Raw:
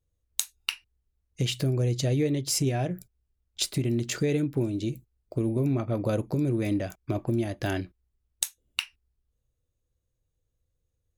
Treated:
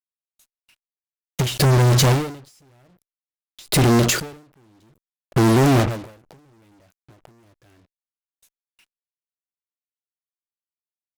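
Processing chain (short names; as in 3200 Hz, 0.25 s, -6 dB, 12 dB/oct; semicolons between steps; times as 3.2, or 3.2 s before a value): fuzz box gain 47 dB, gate -42 dBFS; ending taper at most 100 dB/s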